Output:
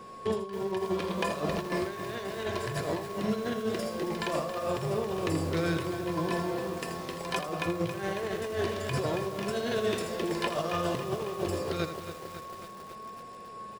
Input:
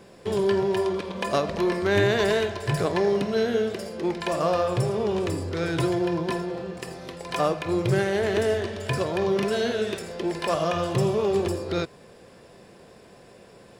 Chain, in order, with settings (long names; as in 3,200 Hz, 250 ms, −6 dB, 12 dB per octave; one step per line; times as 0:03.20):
compressor whose output falls as the input rises −27 dBFS, ratio −0.5
steady tone 1,100 Hz −40 dBFS
flanger 0.15 Hz, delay 4.1 ms, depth 5.3 ms, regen +70%
single-tap delay 81 ms −10.5 dB
feedback echo at a low word length 274 ms, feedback 80%, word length 7 bits, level −10 dB